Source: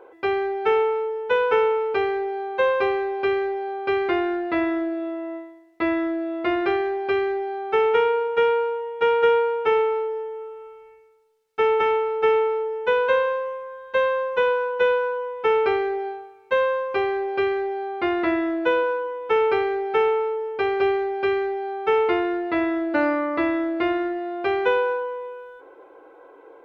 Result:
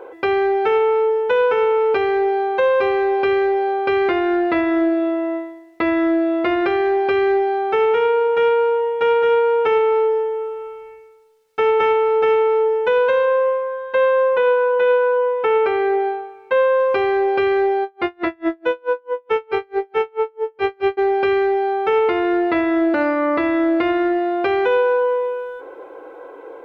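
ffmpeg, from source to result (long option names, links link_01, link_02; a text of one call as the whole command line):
ffmpeg -i in.wav -filter_complex "[0:a]asettb=1/sr,asplit=3[link_01][link_02][link_03];[link_01]atrim=end=13.254[link_04];[link_02]atrim=start=13.25:end=16.8,asetpts=PTS-STARTPTS,afade=type=in:duration=0.004:curve=qsin,afade=type=out:start_time=3.546:duration=0.004:curve=qsin,bass=frequency=250:gain=-5,treble=frequency=4000:gain=-9[link_05];[link_03]atrim=start=16.796[link_06];[link_04][link_05]acrossfade=duration=0.004:curve1=hsin:curve2=qsin[link_07];[link_07][link_06]acrossfade=duration=0.004:curve1=qsin:curve2=hsin,asplit=3[link_08][link_09][link_10];[link_08]afade=type=out:start_time=17.83:duration=0.02[link_11];[link_09]aeval=exprs='val(0)*pow(10,-38*(0.5-0.5*cos(2*PI*4.6*n/s))/20)':channel_layout=same,afade=type=in:start_time=17.83:duration=0.02,afade=type=out:start_time=20.97:duration=0.02[link_12];[link_10]afade=type=in:start_time=20.97:duration=0.02[link_13];[link_11][link_12][link_13]amix=inputs=3:normalize=0,equalizer=frequency=510:width=6.9:gain=4,alimiter=limit=-19dB:level=0:latency=1:release=237,volume=9dB" out.wav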